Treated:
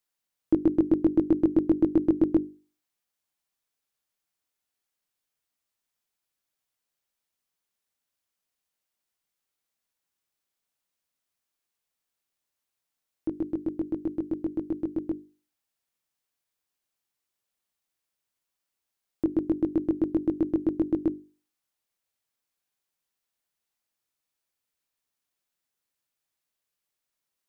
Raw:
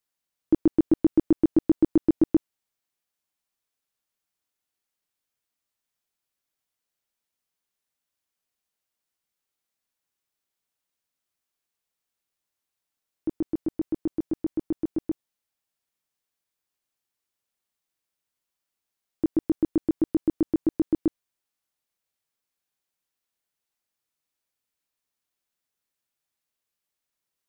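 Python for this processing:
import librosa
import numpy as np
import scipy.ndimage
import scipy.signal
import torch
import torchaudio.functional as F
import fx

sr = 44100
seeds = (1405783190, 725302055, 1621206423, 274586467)

y = fx.hum_notches(x, sr, base_hz=50, count=9)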